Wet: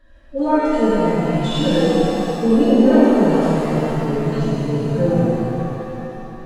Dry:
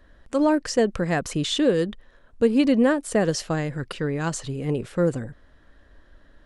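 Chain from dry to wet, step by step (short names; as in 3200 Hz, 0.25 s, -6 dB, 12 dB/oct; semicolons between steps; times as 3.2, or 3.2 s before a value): median-filter separation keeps harmonic; transient shaper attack -1 dB, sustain +6 dB; shimmer reverb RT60 3.3 s, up +7 st, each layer -8 dB, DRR -10.5 dB; gain -3.5 dB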